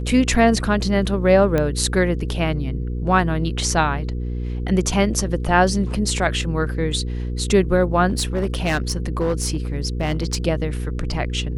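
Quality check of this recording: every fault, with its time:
mains hum 60 Hz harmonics 8 −25 dBFS
0:01.58: click −9 dBFS
0:08.08–0:10.37: clipping −15.5 dBFS

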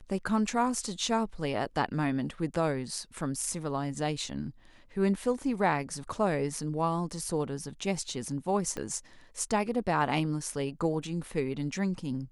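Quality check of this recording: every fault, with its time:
0:08.77: click −22 dBFS

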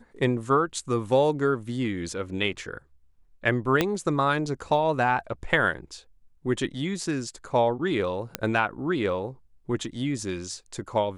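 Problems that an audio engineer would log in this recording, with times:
0:03.81: click −7 dBFS
0:08.35: click −9 dBFS

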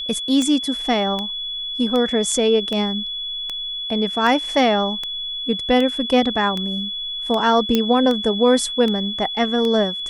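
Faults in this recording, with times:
scratch tick 78 rpm −12 dBFS
whistle 3,400 Hz −25 dBFS
0:07.75: click −4 dBFS

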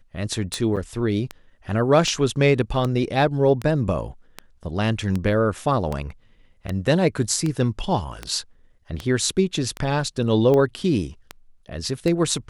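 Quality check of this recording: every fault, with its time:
scratch tick 78 rpm −13 dBFS
0:00.76–0:00.77: drop-out 7 ms

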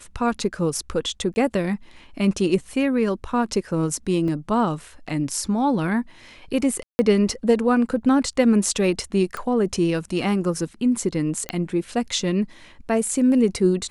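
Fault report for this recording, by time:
0:01.34–0:01.36: drop-out 20 ms
0:04.28: drop-out 2.2 ms
0:06.83–0:06.99: drop-out 160 ms
0:09.37: click −17 dBFS
0:11.49: click −10 dBFS

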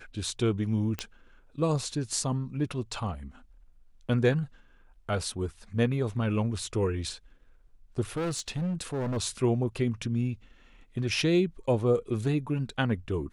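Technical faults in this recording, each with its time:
0:00.99: click −16 dBFS
0:08.16–0:09.18: clipping −27 dBFS

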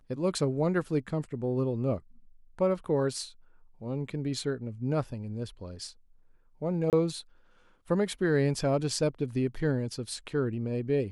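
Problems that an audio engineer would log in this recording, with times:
0:06.90–0:06.93: drop-out 28 ms

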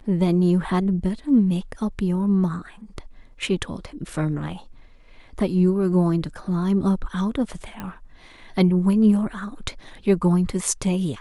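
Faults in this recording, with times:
0:07.80: click −18 dBFS

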